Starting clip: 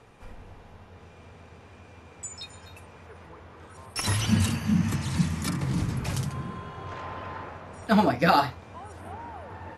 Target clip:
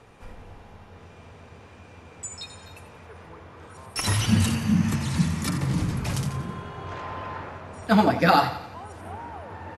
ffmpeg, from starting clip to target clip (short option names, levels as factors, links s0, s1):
-af "aecho=1:1:88|176|264|352|440:0.251|0.123|0.0603|0.0296|0.0145,volume=1.26"